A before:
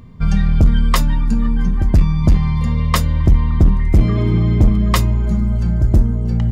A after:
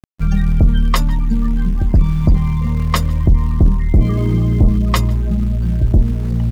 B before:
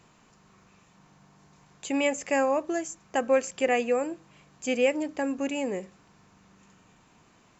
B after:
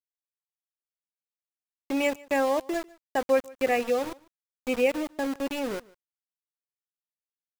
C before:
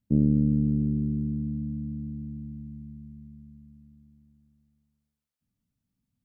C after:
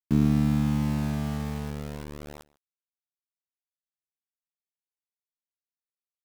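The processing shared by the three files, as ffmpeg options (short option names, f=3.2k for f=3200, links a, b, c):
-af "afftdn=nr=20:nf=-31,aeval=exprs='val(0)*gte(abs(val(0)),0.0266)':c=same,aecho=1:1:148:0.0668"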